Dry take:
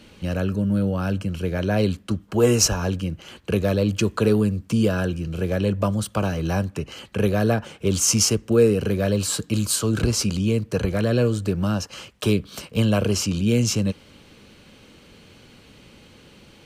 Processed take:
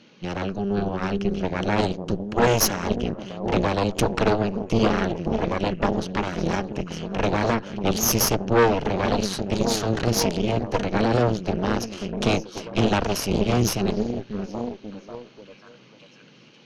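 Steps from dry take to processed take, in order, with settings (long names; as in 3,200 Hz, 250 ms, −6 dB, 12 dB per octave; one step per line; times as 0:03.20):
echo through a band-pass that steps 539 ms, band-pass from 190 Hz, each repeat 0.7 octaves, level −3 dB
brick-wall band-pass 110–6,800 Hz
harmonic generator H 6 −8 dB, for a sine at −5 dBFS
level −4 dB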